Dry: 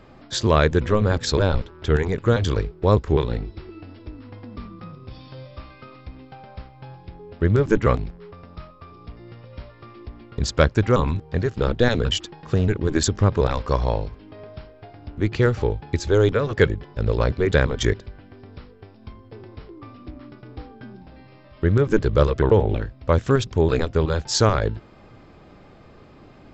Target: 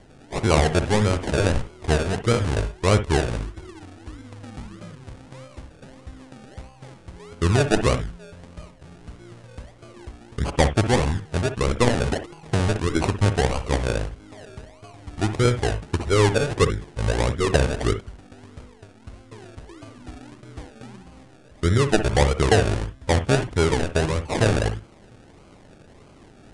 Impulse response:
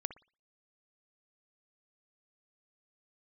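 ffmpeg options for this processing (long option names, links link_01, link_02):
-filter_complex "[0:a]acrusher=samples=34:mix=1:aa=0.000001:lfo=1:lforange=20.4:lforate=1.6[link_01];[1:a]atrim=start_sample=2205,atrim=end_sample=3528[link_02];[link_01][link_02]afir=irnorm=-1:irlink=0,aresample=22050,aresample=44100"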